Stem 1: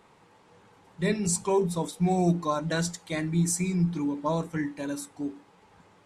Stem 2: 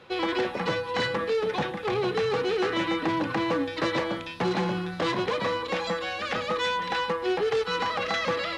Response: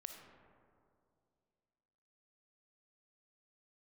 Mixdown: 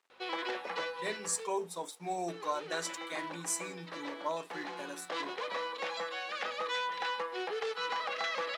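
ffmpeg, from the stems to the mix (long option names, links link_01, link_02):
-filter_complex "[0:a]aeval=exprs='sgn(val(0))*max(abs(val(0))-0.00168,0)':channel_layout=same,volume=-5dB,asplit=2[link_01][link_02];[1:a]aeval=exprs='val(0)+0.00447*(sin(2*PI*50*n/s)+sin(2*PI*2*50*n/s)/2+sin(2*PI*3*50*n/s)/3+sin(2*PI*4*50*n/s)/4+sin(2*PI*5*50*n/s)/5)':channel_layout=same,adelay=100,volume=-6.5dB,asplit=3[link_03][link_04][link_05];[link_03]atrim=end=1.47,asetpts=PTS-STARTPTS,afade=type=out:start_time=1.466:duration=0.004:curve=hsin[link_06];[link_04]atrim=start=1.47:end=2.28,asetpts=PTS-STARTPTS,volume=0[link_07];[link_05]atrim=start=2.28,asetpts=PTS-STARTPTS,afade=type=in:duration=0.004:curve=hsin[link_08];[link_06][link_07][link_08]concat=n=3:v=0:a=1[link_09];[link_02]apad=whole_len=382666[link_10];[link_09][link_10]sidechaincompress=threshold=-35dB:ratio=8:attack=34:release=1180[link_11];[link_01][link_11]amix=inputs=2:normalize=0,highpass=530"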